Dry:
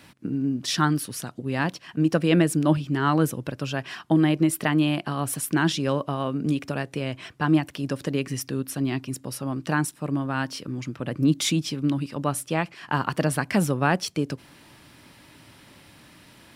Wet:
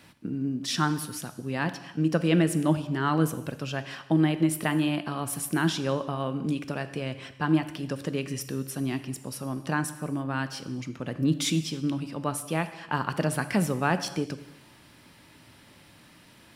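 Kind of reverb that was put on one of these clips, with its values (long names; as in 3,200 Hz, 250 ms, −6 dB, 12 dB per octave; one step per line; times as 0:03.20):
reverb whose tail is shaped and stops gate 350 ms falling, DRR 10.5 dB
level −3.5 dB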